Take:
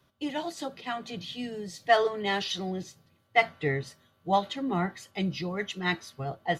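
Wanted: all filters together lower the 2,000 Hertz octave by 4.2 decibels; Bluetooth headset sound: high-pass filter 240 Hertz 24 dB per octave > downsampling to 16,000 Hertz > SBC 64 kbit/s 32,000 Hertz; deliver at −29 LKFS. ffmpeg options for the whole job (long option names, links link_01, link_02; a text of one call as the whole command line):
ffmpeg -i in.wav -af "highpass=frequency=240:width=0.5412,highpass=frequency=240:width=1.3066,equalizer=frequency=2000:width_type=o:gain=-4.5,aresample=16000,aresample=44100,volume=3dB" -ar 32000 -c:a sbc -b:a 64k out.sbc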